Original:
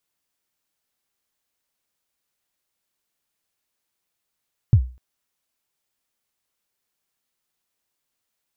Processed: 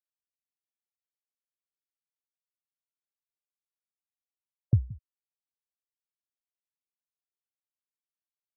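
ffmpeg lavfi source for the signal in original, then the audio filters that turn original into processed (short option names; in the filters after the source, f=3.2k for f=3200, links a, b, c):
-f lavfi -i "aevalsrc='0.501*pow(10,-3*t/0.34)*sin(2*PI*(130*0.074/log(62/130)*(exp(log(62/130)*min(t,0.074)/0.074)-1)+62*max(t-0.074,0)))':d=0.25:s=44100"
-filter_complex "[0:a]highpass=f=180:p=1,asplit=2[a][b];[b]adelay=174.9,volume=-19dB,highshelf=f=4k:g=-3.94[c];[a][c]amix=inputs=2:normalize=0,afftfilt=real='re*gte(hypot(re,im),0.0316)':imag='im*gte(hypot(re,im),0.0316)':win_size=1024:overlap=0.75"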